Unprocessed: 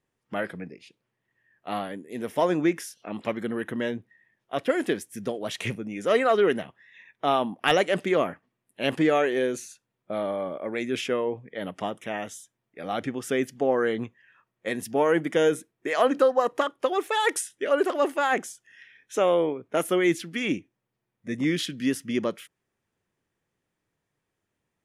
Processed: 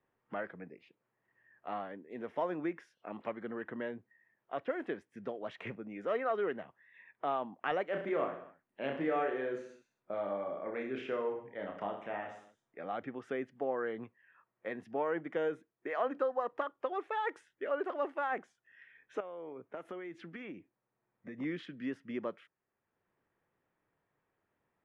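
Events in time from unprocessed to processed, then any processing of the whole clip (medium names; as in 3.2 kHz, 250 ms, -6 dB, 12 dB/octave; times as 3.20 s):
7.90–12.81 s: reverse bouncing-ball echo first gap 30 ms, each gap 1.15×, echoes 6
19.20–21.38 s: compression 8:1, threshold -32 dBFS
whole clip: low-pass 1.5 kHz 12 dB/octave; bass shelf 430 Hz -10.5 dB; three bands compressed up and down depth 40%; trim -6.5 dB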